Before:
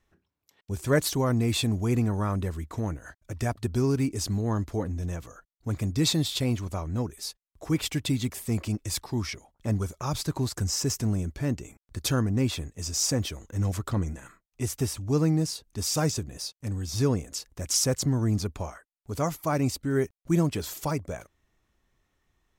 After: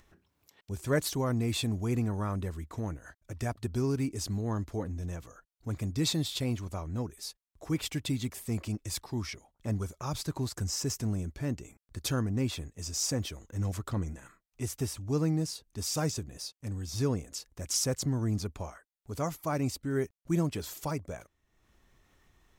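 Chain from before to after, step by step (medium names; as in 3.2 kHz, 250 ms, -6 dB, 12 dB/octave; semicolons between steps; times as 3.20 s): upward compressor, threshold -47 dBFS; trim -5 dB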